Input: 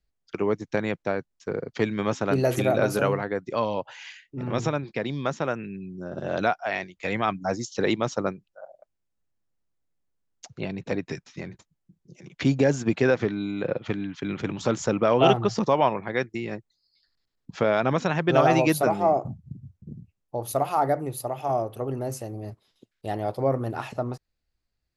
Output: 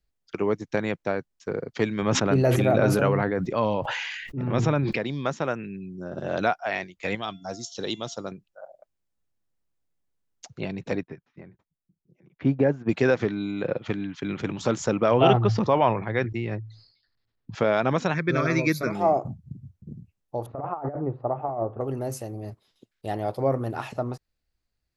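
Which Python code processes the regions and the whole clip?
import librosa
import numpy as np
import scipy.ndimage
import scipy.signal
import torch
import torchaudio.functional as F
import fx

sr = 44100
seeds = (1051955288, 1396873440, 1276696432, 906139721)

y = fx.chain(x, sr, fx.bass_treble(bass_db=4, treble_db=-8),
    fx.sustainer(db_per_s=26.0), at=(2.02, 4.96))
y = fx.chain(y, sr, fx.high_shelf_res(hz=2700.0, db=6.0, q=3.0),
    fx.comb_fb(f0_hz=690.0, decay_s=0.45, harmonics='all', damping=0.0, mix_pct=60), at=(7.15, 8.32))
y = fx.chain(y, sr, fx.lowpass(hz=1700.0, slope=12),
    fx.upward_expand(threshold_db=-40.0, expansion=1.5), at=(11.03, 12.89))
y = fx.chain(y, sr, fx.lowpass(hz=3700.0, slope=12),
    fx.peak_eq(hz=110.0, db=12.0, octaves=0.21),
    fx.sustainer(db_per_s=95.0), at=(15.11, 17.55))
y = fx.chain(y, sr, fx.peak_eq(hz=2300.0, db=10.5, octaves=0.26),
    fx.fixed_phaser(hz=2900.0, stages=6), at=(18.14, 18.95))
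y = fx.chain(y, sr, fx.lowpass(hz=1400.0, slope=24),
    fx.over_compress(threshold_db=-27.0, ratio=-0.5), at=(20.46, 21.81))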